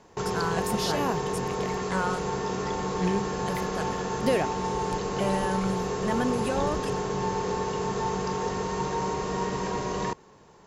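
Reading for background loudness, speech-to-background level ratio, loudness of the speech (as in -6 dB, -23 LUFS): -30.0 LUFS, -1.5 dB, -31.5 LUFS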